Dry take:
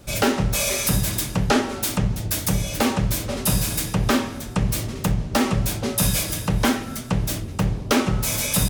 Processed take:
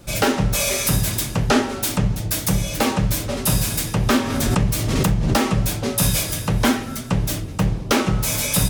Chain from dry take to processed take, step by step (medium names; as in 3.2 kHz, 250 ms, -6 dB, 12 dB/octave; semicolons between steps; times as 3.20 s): flange 0.38 Hz, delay 5.8 ms, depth 2.5 ms, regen -62%; 4.21–5.41 s: swell ahead of each attack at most 25 dB/s; trim +6 dB